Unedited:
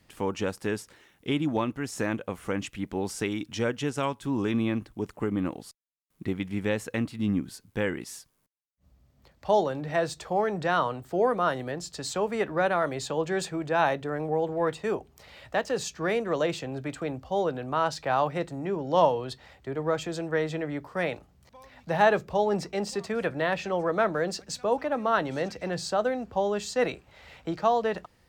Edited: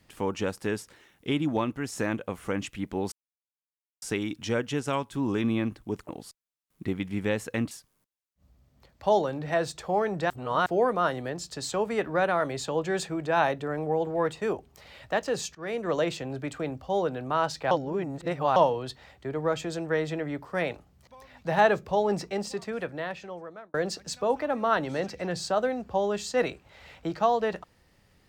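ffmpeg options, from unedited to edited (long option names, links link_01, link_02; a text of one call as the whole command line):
ffmpeg -i in.wav -filter_complex "[0:a]asplit=10[link_01][link_02][link_03][link_04][link_05][link_06][link_07][link_08][link_09][link_10];[link_01]atrim=end=3.12,asetpts=PTS-STARTPTS,afade=type=out:start_time=3.116:duration=0.004:curve=hsin,apad=pad_dur=0.9[link_11];[link_02]atrim=start=3.12:end=5.192,asetpts=PTS-STARTPTS,afade=type=in:duration=0.004:curve=hsin[link_12];[link_03]atrim=start=5.488:end=7.112[link_13];[link_04]atrim=start=8.128:end=10.722[link_14];[link_05]atrim=start=10.718:end=11.082,asetpts=PTS-STARTPTS,areverse[link_15];[link_06]atrim=start=11.078:end=15.97,asetpts=PTS-STARTPTS,afade=type=out:start_time=4.888:duration=0.004:curve=hsin:silence=0.11885[link_16];[link_07]atrim=start=15.97:end=18.132,asetpts=PTS-STARTPTS,afade=type=in:duration=0.34:silence=0.11885[link_17];[link_08]atrim=start=18.128:end=18.982,asetpts=PTS-STARTPTS,areverse[link_18];[link_09]atrim=start=18.978:end=24.16,asetpts=PTS-STARTPTS,afade=type=out:start_time=3.662:duration=1.52[link_19];[link_10]atrim=start=24.16,asetpts=PTS-STARTPTS,afade=type=in:duration=0.004:curve=hsin[link_20];[link_11][link_12]concat=n=2:v=0:a=1[link_21];[link_21][link_13]acrossfade=duration=0.004:curve1=hsin:curve2=hsin[link_22];[link_22][link_14]acrossfade=duration=0.004:curve1=hsin:curve2=hsin[link_23];[link_23][link_15]acrossfade=duration=0.004:curve1=hsin:curve2=hsin[link_24];[link_16][link_17]concat=n=2:v=0:a=1[link_25];[link_24][link_25]acrossfade=duration=0.004:curve1=hsin:curve2=hsin[link_26];[link_26][link_18]acrossfade=duration=0.004:curve1=hsin:curve2=hsin[link_27];[link_19][link_20]concat=n=2:v=0:a=1[link_28];[link_27][link_28]acrossfade=duration=0.004:curve1=hsin:curve2=hsin" out.wav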